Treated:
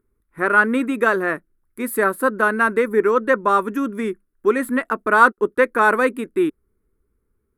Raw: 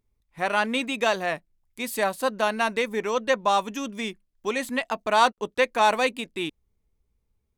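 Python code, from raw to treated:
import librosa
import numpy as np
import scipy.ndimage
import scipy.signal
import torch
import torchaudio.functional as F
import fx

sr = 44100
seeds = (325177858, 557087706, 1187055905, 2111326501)

y = fx.curve_eq(x, sr, hz=(150.0, 380.0, 740.0, 1400.0, 2900.0, 6200.0, 11000.0, 16000.0), db=(0, 12, -7, 12, -12, -15, 6, -4))
y = y * 10.0 ** (2.5 / 20.0)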